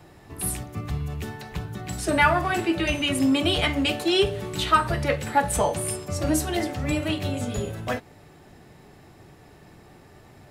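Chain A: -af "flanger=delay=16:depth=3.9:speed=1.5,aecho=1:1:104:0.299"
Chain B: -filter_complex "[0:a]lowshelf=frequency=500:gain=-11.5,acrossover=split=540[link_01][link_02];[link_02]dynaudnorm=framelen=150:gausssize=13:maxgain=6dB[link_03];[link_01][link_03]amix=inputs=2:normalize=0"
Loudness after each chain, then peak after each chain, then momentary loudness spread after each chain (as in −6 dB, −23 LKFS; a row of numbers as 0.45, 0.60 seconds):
−27.5, −22.5 LKFS; −8.0, −4.0 dBFS; 12, 18 LU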